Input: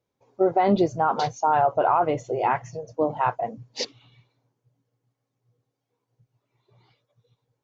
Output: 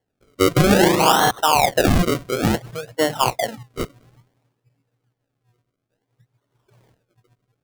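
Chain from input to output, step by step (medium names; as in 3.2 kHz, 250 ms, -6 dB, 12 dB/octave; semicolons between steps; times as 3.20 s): 0.54–1.31 s: flutter echo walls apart 6.2 m, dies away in 1.1 s; decimation with a swept rate 35×, swing 100% 0.58 Hz; trim +4 dB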